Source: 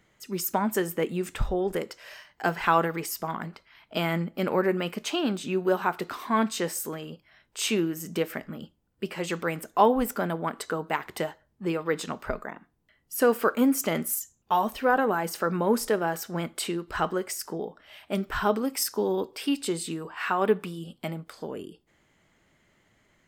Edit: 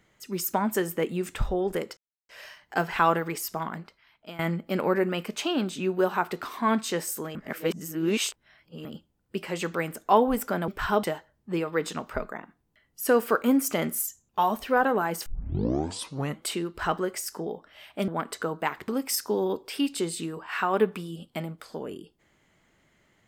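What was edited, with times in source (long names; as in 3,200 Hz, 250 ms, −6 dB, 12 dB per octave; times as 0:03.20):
0:01.97: splice in silence 0.32 s
0:03.32–0:04.07: fade out, to −18.5 dB
0:07.03–0:08.53: reverse
0:10.36–0:11.16: swap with 0:18.21–0:18.56
0:15.39: tape start 1.18 s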